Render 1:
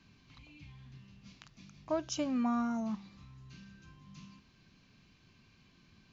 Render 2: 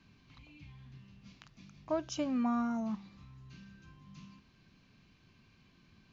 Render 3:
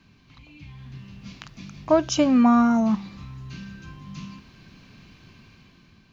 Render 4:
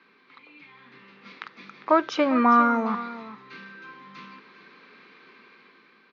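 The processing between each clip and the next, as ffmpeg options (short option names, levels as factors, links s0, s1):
-af "highshelf=f=5100:g=-6.5"
-af "dynaudnorm=f=240:g=7:m=2.66,volume=2.11"
-af "highpass=f=300:w=0.5412,highpass=f=300:w=1.3066,equalizer=f=300:t=q:w=4:g=-6,equalizer=f=460:t=q:w=4:g=6,equalizer=f=660:t=q:w=4:g=-9,equalizer=f=1300:t=q:w=4:g=6,equalizer=f=2000:t=q:w=4:g=5,equalizer=f=2900:t=q:w=4:g=-8,lowpass=f=3700:w=0.5412,lowpass=f=3700:w=1.3066,aecho=1:1:402:0.178,volume=1.5"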